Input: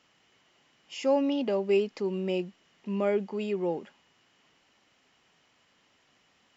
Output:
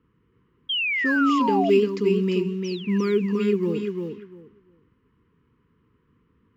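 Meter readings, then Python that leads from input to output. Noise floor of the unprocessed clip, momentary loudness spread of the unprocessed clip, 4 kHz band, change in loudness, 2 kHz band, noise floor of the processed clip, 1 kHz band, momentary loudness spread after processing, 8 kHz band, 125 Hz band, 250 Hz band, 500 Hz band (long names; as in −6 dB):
−68 dBFS, 12 LU, +13.0 dB, +7.0 dB, +17.0 dB, −67 dBFS, +11.5 dB, 11 LU, can't be measured, +11.0 dB, +9.0 dB, +5.0 dB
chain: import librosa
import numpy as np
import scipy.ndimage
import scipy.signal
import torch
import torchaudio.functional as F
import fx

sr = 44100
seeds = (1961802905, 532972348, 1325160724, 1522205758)

p1 = fx.spec_paint(x, sr, seeds[0], shape='fall', start_s=2.64, length_s=0.34, low_hz=1600.0, high_hz=6200.0, level_db=-45.0)
p2 = p1 + fx.echo_feedback(p1, sr, ms=347, feedback_pct=18, wet_db=-5.0, dry=0)
p3 = fx.env_lowpass(p2, sr, base_hz=810.0, full_db=-27.0)
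p4 = fx.quant_float(p3, sr, bits=6)
p5 = scipy.signal.sosfilt(scipy.signal.cheby1(3, 1.0, [470.0, 1000.0], 'bandstop', fs=sr, output='sos'), p4)
p6 = fx.peak_eq(p5, sr, hz=62.0, db=13.0, octaves=2.8)
p7 = fx.spec_paint(p6, sr, seeds[1], shape='fall', start_s=0.69, length_s=1.01, low_hz=640.0, high_hz=3300.0, level_db=-29.0)
y = p7 * librosa.db_to_amplitude(4.5)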